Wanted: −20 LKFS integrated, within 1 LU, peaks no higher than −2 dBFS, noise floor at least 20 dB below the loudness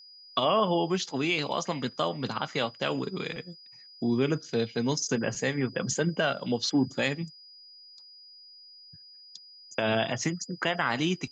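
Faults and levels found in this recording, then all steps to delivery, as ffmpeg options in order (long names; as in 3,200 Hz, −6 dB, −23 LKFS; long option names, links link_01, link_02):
interfering tone 4,900 Hz; level of the tone −49 dBFS; integrated loudness −29.0 LKFS; sample peak −12.5 dBFS; target loudness −20.0 LKFS
→ -af "bandreject=frequency=4900:width=30"
-af "volume=9dB"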